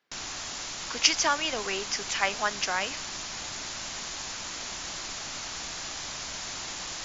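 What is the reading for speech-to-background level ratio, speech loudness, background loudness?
7.0 dB, −27.5 LKFS, −34.5 LKFS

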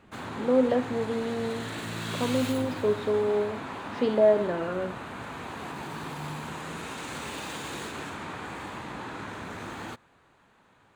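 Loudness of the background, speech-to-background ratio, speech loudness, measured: −36.5 LKFS, 9.5 dB, −27.0 LKFS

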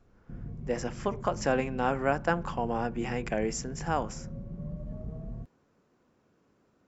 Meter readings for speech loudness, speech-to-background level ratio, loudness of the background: −31.5 LKFS, 10.5 dB, −42.0 LKFS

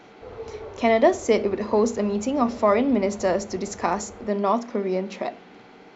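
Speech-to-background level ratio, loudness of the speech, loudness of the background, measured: 19.0 dB, −23.5 LKFS, −42.5 LKFS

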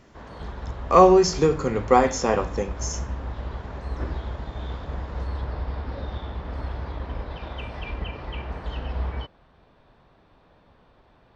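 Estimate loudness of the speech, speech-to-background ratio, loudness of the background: −19.5 LKFS, 14.5 dB, −34.0 LKFS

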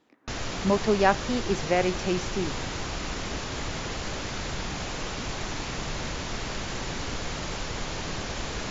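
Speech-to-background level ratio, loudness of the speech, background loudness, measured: 6.5 dB, −26.5 LKFS, −33.0 LKFS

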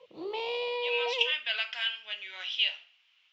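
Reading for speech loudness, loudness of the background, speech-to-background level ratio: −30.5 LKFS, −33.5 LKFS, 3.0 dB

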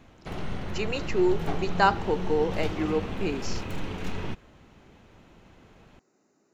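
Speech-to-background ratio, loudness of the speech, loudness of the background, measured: 7.0 dB, −28.0 LKFS, −35.0 LKFS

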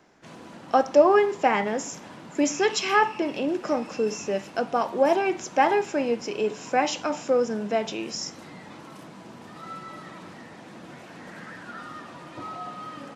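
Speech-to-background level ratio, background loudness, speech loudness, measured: 17.5 dB, −42.0 LKFS, −24.5 LKFS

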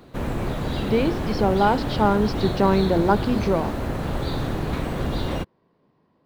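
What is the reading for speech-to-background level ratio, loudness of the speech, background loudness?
5.5 dB, −22.0 LKFS, −27.5 LKFS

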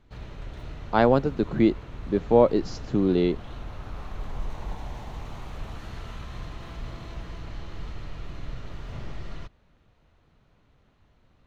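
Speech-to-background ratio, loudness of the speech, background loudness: 17.0 dB, −23.5 LKFS, −40.5 LKFS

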